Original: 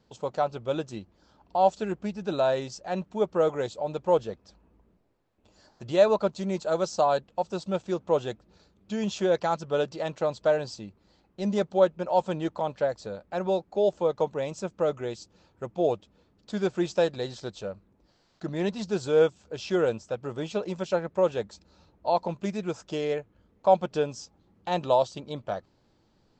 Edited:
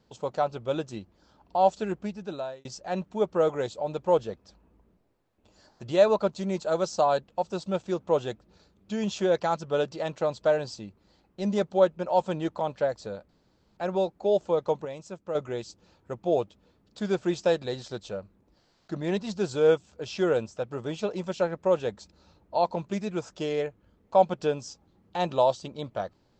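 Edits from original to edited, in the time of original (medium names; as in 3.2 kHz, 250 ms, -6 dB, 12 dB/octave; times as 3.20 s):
1.97–2.65 s: fade out
13.29 s: insert room tone 0.48 s
14.37–14.87 s: gain -7 dB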